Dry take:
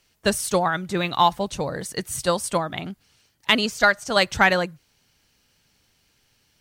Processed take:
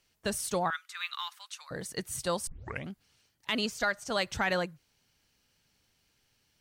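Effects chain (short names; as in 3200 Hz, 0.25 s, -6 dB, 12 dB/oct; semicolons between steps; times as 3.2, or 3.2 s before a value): limiter -11.5 dBFS, peak gain reduction 7.5 dB; 0.7–1.71 Chebyshev high-pass 1200 Hz, order 4; 2.47 tape start 0.41 s; gain -7.5 dB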